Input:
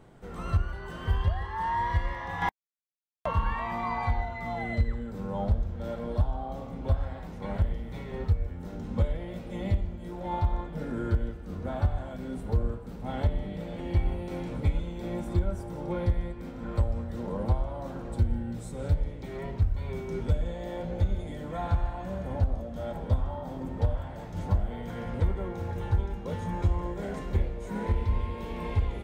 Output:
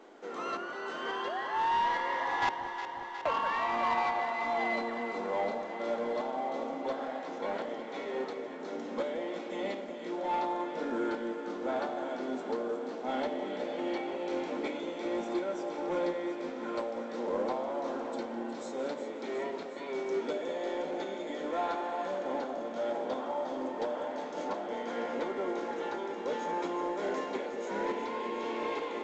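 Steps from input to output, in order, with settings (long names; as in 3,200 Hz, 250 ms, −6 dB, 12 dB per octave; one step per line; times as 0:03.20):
Butterworth high-pass 270 Hz 36 dB per octave
soft clipping −28.5 dBFS, distortion −16 dB
delay that swaps between a low-pass and a high-pass 181 ms, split 810 Hz, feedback 85%, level −8 dB
level +4 dB
mu-law 128 kbit/s 16,000 Hz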